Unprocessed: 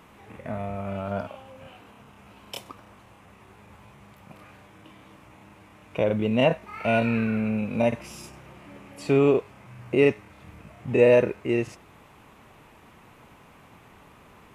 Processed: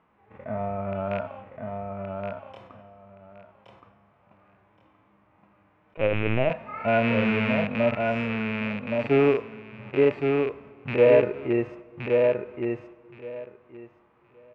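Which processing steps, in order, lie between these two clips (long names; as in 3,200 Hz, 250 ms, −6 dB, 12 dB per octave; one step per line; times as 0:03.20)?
loose part that buzzes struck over −29 dBFS, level −12 dBFS
noise gate −44 dBFS, range −12 dB
low-pass filter 1,700 Hz 12 dB per octave
low-shelf EQ 330 Hz −7 dB
in parallel at 0 dB: brickwall limiter −20.5 dBFS, peak gain reduction 11 dB
on the sum: repeating echo 1,121 ms, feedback 16%, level −4 dB
on a send at −21.5 dB: convolution reverb RT60 1.8 s, pre-delay 80 ms
on the sum: harmonic and percussive parts rebalanced percussive −14 dB
0:05.97–0:06.50: linear-prediction vocoder at 8 kHz pitch kept
level that may rise only so fast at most 490 dB per second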